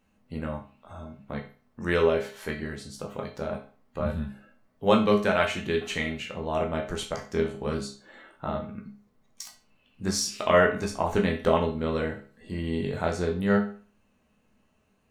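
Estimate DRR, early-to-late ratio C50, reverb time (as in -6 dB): -1.0 dB, 9.0 dB, 0.40 s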